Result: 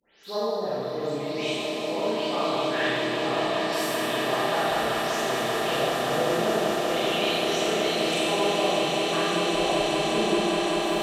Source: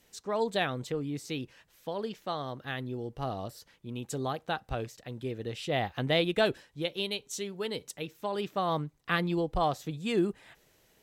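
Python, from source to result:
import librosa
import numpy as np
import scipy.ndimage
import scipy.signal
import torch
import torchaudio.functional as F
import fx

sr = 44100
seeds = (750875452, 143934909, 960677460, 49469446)

y = fx.spec_delay(x, sr, highs='late', ms=234)
y = fx.env_lowpass_down(y, sr, base_hz=450.0, full_db=-26.0)
y = fx.tilt_eq(y, sr, slope=3.5)
y = fx.hum_notches(y, sr, base_hz=50, count=5)
y = fx.echo_swell(y, sr, ms=193, loudest=8, wet_db=-8)
y = fx.rev_schroeder(y, sr, rt60_s=2.1, comb_ms=28, drr_db=-9.5)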